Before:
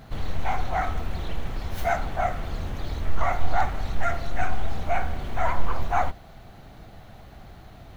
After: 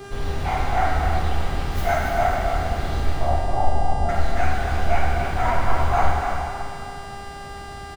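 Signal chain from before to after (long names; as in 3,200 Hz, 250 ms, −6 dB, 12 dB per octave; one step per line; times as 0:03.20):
0:03.16–0:04.09: Butterworth low-pass 890 Hz 36 dB per octave
hum with harmonics 400 Hz, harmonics 27, −40 dBFS −7 dB per octave
single-tap delay 281 ms −7.5 dB
dense smooth reverb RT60 2.4 s, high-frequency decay 0.95×, DRR −3 dB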